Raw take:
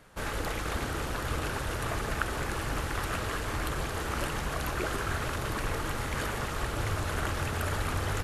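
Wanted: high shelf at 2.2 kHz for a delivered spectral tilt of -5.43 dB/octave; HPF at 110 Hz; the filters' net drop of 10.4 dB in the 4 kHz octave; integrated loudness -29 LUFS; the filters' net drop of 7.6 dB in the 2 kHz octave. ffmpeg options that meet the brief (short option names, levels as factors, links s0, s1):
-af "highpass=110,equalizer=f=2000:t=o:g=-7,highshelf=f=2200:g=-4,equalizer=f=4000:t=o:g=-7.5,volume=2.37"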